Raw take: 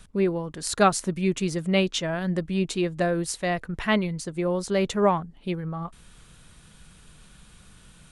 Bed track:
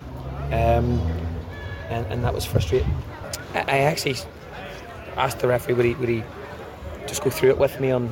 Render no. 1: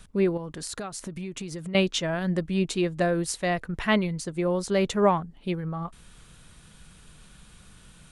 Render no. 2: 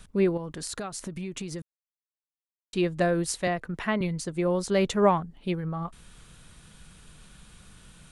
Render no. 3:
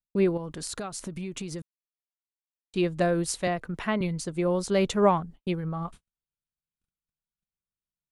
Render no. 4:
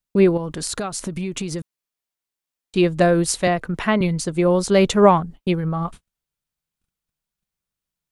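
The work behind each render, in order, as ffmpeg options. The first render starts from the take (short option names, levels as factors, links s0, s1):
-filter_complex "[0:a]asettb=1/sr,asplit=3[s0][s1][s2];[s0]atrim=end=0.374[s3];[s1]atrim=start=0.37:end=1.75,asetpts=PTS-STARTPTS,afade=t=in:d=0.004:c=qsin,afade=t=out:st=1.376:d=0.004:c=qsin,acompressor=threshold=0.0282:ratio=12:attack=3.2:release=140:knee=1:detection=peak[s4];[s2]atrim=start=1.746[s5];[s3][s4]acrossfade=d=0.004:c1=hsin:c2=qsin[s6];[s6][s5]acrossfade=d=0.004:c1=qsin:c2=hsin"
-filter_complex "[0:a]asettb=1/sr,asplit=3[s0][s1][s2];[s0]atrim=end=3.474[s3];[s1]atrim=start=3.47:end=4.01,asetpts=PTS-STARTPTS,afade=t=in:d=0.004:c=qsin,afade=t=out:st=0.536:d=0.004:c=qsin,acrossover=split=150|2200[s4][s5][s6];[s4]acompressor=threshold=0.00562:ratio=4[s7];[s5]acompressor=threshold=0.0708:ratio=4[s8];[s6]acompressor=threshold=0.00631:ratio=4[s9];[s7][s8][s9]amix=inputs=3:normalize=0[s10];[s2]atrim=start=4.006[s11];[s3][s10]acrossfade=d=0.004:c1=hsin:c2=qsin[s12];[s12][s11]acrossfade=d=0.004:c1=qsin:c2=hsin,asplit=3[s13][s14][s15];[s13]atrim=end=1.62,asetpts=PTS-STARTPTS,afade=t=out:st=1.616:d=0.004:c=hsin[s16];[s14]atrim=start=1.62:end=2.73,asetpts=PTS-STARTPTS,volume=0[s17];[s15]atrim=start=2.73,asetpts=PTS-STARTPTS,afade=t=in:d=0.004:c=hsin[s18];[s16][s17][s18]concat=n=3:v=0:a=1"
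-af "agate=range=0.00355:threshold=0.00794:ratio=16:detection=peak,equalizer=f=1800:t=o:w=0.33:g=-3"
-af "volume=2.66,alimiter=limit=0.794:level=0:latency=1"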